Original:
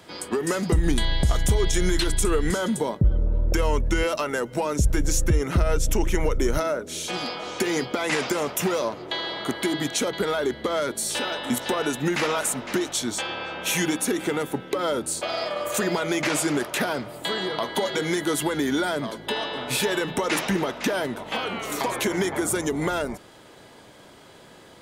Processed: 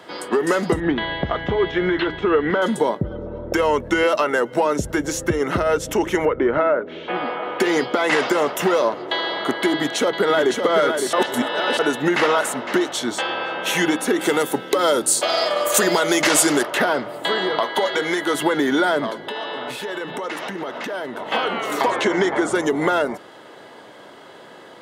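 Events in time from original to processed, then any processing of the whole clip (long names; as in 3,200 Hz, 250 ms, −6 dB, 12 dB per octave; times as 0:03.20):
0:00.80–0:02.62: inverse Chebyshev low-pass filter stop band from 11,000 Hz, stop band 70 dB
0:06.25–0:07.60: low-pass filter 2,600 Hz 24 dB per octave
0:09.73–0:10.59: delay throw 560 ms, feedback 35%, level −5.5 dB
0:11.13–0:11.79: reverse
0:14.21–0:16.63: bass and treble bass 0 dB, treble +14 dB
0:17.60–0:18.35: low-shelf EQ 370 Hz −7.5 dB
0:19.12–0:21.23: downward compressor, threshold −31 dBFS
0:21.90–0:22.55: low-pass filter 8,000 Hz 24 dB per octave
whole clip: high-pass filter 120 Hz 12 dB per octave; bass and treble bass −9 dB, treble −11 dB; notch filter 2,400 Hz, Q 9.5; level +8 dB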